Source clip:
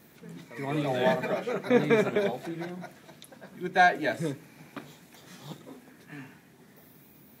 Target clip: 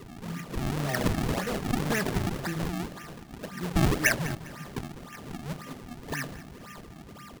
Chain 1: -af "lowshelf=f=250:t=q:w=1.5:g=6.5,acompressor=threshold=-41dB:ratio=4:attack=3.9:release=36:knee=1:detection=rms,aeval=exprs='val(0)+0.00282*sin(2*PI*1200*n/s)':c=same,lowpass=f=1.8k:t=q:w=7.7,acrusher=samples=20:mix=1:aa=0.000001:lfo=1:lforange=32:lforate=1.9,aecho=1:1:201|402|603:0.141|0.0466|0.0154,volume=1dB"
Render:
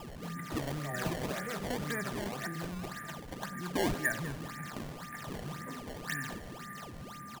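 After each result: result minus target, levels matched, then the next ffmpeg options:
compressor: peak gain reduction +8 dB; decimation with a swept rate: distortion -7 dB
-af "lowshelf=f=250:t=q:w=1.5:g=6.5,acompressor=threshold=-30dB:ratio=4:attack=3.9:release=36:knee=1:detection=rms,aeval=exprs='val(0)+0.00282*sin(2*PI*1200*n/s)':c=same,lowpass=f=1.8k:t=q:w=7.7,acrusher=samples=20:mix=1:aa=0.000001:lfo=1:lforange=32:lforate=1.9,aecho=1:1:201|402|603:0.141|0.0466|0.0154,volume=1dB"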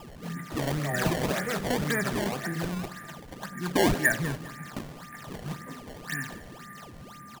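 decimation with a swept rate: distortion -7 dB
-af "lowshelf=f=250:t=q:w=1.5:g=6.5,acompressor=threshold=-30dB:ratio=4:attack=3.9:release=36:knee=1:detection=rms,aeval=exprs='val(0)+0.00282*sin(2*PI*1200*n/s)':c=same,lowpass=f=1.8k:t=q:w=7.7,acrusher=samples=51:mix=1:aa=0.000001:lfo=1:lforange=81.6:lforate=1.9,aecho=1:1:201|402|603:0.141|0.0466|0.0154,volume=1dB"

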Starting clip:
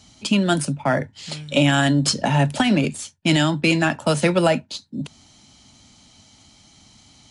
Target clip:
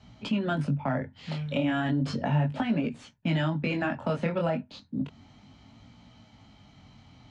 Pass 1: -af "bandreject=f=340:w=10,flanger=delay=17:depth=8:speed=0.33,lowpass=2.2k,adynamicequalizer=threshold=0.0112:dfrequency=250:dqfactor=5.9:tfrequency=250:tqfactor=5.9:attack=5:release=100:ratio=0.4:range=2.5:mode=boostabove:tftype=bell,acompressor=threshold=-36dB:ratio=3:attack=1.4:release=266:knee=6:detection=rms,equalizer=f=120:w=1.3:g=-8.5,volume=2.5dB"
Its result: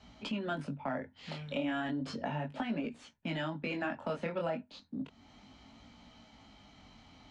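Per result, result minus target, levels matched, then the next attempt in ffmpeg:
125 Hz band -5.5 dB; compressor: peak gain reduction +5.5 dB
-af "bandreject=f=340:w=10,flanger=delay=17:depth=8:speed=0.33,lowpass=2.2k,adynamicequalizer=threshold=0.0112:dfrequency=250:dqfactor=5.9:tfrequency=250:tqfactor=5.9:attack=5:release=100:ratio=0.4:range=2.5:mode=boostabove:tftype=bell,acompressor=threshold=-36dB:ratio=3:attack=1.4:release=266:knee=6:detection=rms,equalizer=f=120:w=1.3:g=3.5,volume=2.5dB"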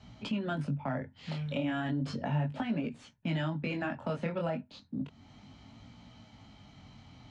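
compressor: peak gain reduction +5.5 dB
-af "bandreject=f=340:w=10,flanger=delay=17:depth=8:speed=0.33,lowpass=2.2k,adynamicequalizer=threshold=0.0112:dfrequency=250:dqfactor=5.9:tfrequency=250:tqfactor=5.9:attack=5:release=100:ratio=0.4:range=2.5:mode=boostabove:tftype=bell,acompressor=threshold=-27.5dB:ratio=3:attack=1.4:release=266:knee=6:detection=rms,equalizer=f=120:w=1.3:g=3.5,volume=2.5dB"

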